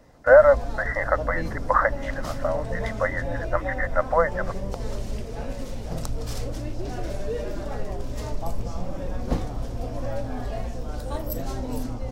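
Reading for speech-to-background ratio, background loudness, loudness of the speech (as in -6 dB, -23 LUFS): 10.0 dB, -32.5 LUFS, -22.5 LUFS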